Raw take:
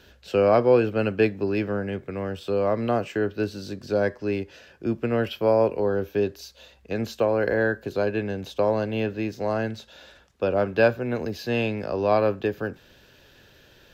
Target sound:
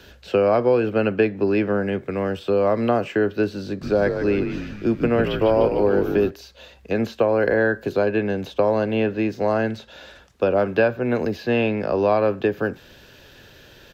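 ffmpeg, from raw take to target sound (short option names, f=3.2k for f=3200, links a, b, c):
-filter_complex "[0:a]acrossover=split=130|3200[a][b][c];[a]acompressor=threshold=-46dB:ratio=4[d];[b]acompressor=threshold=-21dB:ratio=4[e];[c]acompressor=threshold=-56dB:ratio=4[f];[d][e][f]amix=inputs=3:normalize=0,asplit=3[g][h][i];[g]afade=t=out:st=3.81:d=0.02[j];[h]asplit=8[k][l][m][n][o][p][q][r];[l]adelay=150,afreqshift=-66,volume=-7dB[s];[m]adelay=300,afreqshift=-132,volume=-12.2dB[t];[n]adelay=450,afreqshift=-198,volume=-17.4dB[u];[o]adelay=600,afreqshift=-264,volume=-22.6dB[v];[p]adelay=750,afreqshift=-330,volume=-27.8dB[w];[q]adelay=900,afreqshift=-396,volume=-33dB[x];[r]adelay=1050,afreqshift=-462,volume=-38.2dB[y];[k][s][t][u][v][w][x][y]amix=inputs=8:normalize=0,afade=t=in:st=3.81:d=0.02,afade=t=out:st=6.29:d=0.02[z];[i]afade=t=in:st=6.29:d=0.02[aa];[j][z][aa]amix=inputs=3:normalize=0,volume=6.5dB"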